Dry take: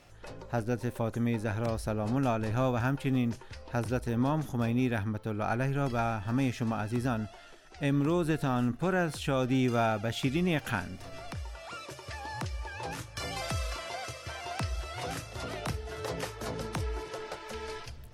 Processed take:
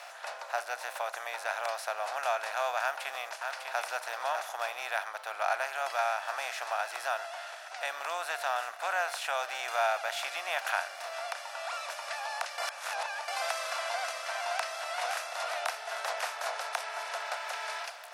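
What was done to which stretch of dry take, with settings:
2.81–3.82 echo throw 0.6 s, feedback 10%, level -8.5 dB
12.58–13.28 reverse
whole clip: per-bin compression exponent 0.6; elliptic high-pass 660 Hz, stop band 70 dB; notch 3200 Hz, Q 16

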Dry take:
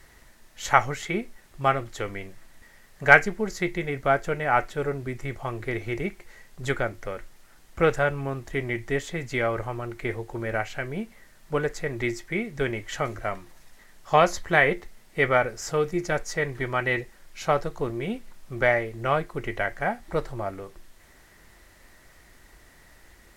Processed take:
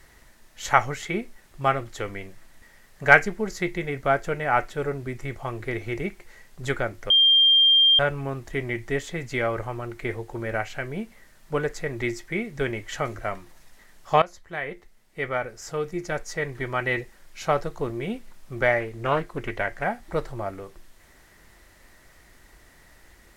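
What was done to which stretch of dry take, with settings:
7.1–7.99 bleep 3190 Hz -13.5 dBFS
14.22–17 fade in, from -18 dB
18.8–19.84 Doppler distortion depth 0.29 ms

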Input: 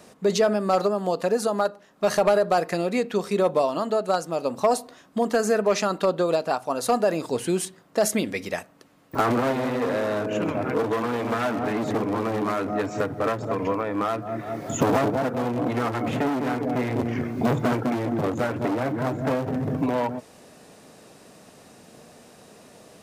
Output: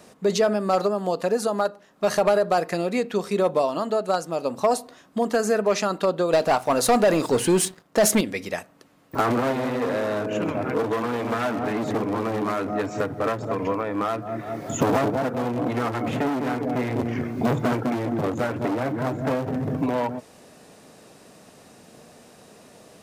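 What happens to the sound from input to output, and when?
6.33–8.21 sample leveller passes 2

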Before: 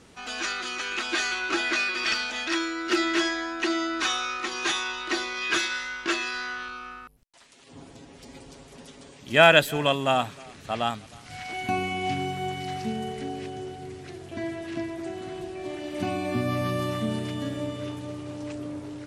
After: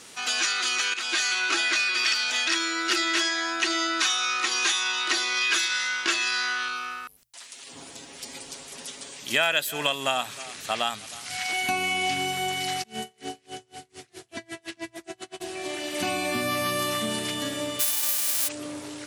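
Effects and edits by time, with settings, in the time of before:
0.94–1.67 fade in equal-power, from -12.5 dB
12.82–15.4 dB-linear tremolo 3 Hz -> 8.9 Hz, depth 35 dB
17.79–18.47 spectral whitening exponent 0.1
whole clip: tilt +3.5 dB/oct; notches 60/120 Hz; compressor 4:1, threshold -27 dBFS; gain +4.5 dB

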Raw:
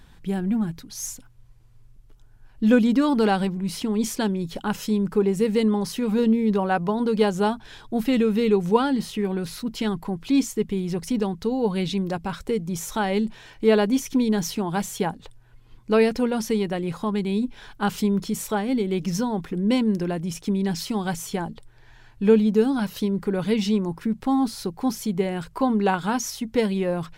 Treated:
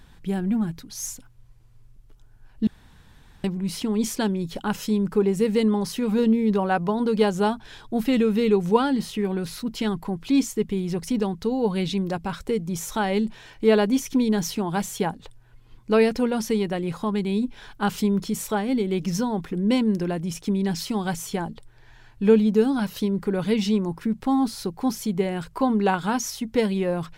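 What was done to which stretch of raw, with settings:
2.67–3.44 room tone

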